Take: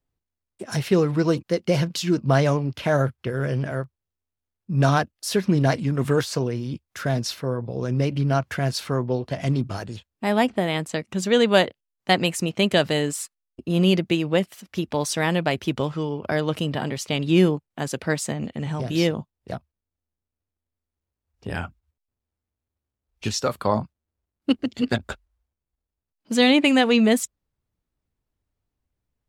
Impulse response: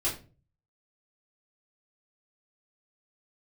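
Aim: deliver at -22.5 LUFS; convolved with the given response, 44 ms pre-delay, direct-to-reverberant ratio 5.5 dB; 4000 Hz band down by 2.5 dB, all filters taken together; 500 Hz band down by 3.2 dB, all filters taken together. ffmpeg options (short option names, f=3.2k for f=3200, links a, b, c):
-filter_complex "[0:a]equalizer=f=500:t=o:g=-4,equalizer=f=4k:t=o:g=-3.5,asplit=2[a][b];[1:a]atrim=start_sample=2205,adelay=44[c];[b][c]afir=irnorm=-1:irlink=0,volume=-12dB[d];[a][d]amix=inputs=2:normalize=0,volume=0.5dB"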